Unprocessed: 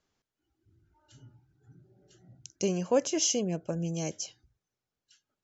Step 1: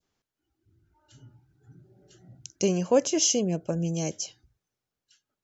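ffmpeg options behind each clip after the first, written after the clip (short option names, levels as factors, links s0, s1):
-af "adynamicequalizer=threshold=0.00447:dfrequency=1500:dqfactor=0.8:tfrequency=1500:tqfactor=0.8:attack=5:release=100:ratio=0.375:range=2.5:mode=cutabove:tftype=bell,dynaudnorm=f=300:g=9:m=1.68"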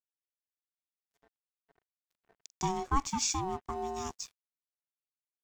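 -af "aeval=exprs='val(0)*sin(2*PI*560*n/s)':c=same,aeval=exprs='sgn(val(0))*max(abs(val(0))-0.00355,0)':c=same,volume=0.596"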